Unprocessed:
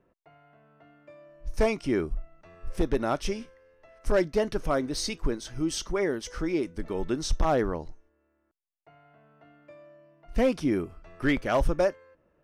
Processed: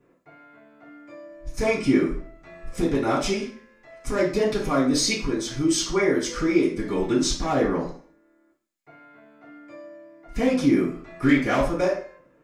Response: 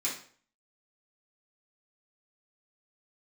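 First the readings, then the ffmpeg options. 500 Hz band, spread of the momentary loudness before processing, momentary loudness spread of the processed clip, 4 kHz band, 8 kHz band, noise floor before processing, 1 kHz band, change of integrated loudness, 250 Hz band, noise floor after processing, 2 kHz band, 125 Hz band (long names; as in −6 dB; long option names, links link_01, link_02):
+3.5 dB, 12 LU, 16 LU, +7.5 dB, +9.0 dB, −73 dBFS, +3.5 dB, +5.5 dB, +7.5 dB, −62 dBFS, +6.0 dB, +4.0 dB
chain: -filter_complex "[0:a]acompressor=threshold=-25dB:ratio=6[link_01];[1:a]atrim=start_sample=2205[link_02];[link_01][link_02]afir=irnorm=-1:irlink=0,volume=4dB"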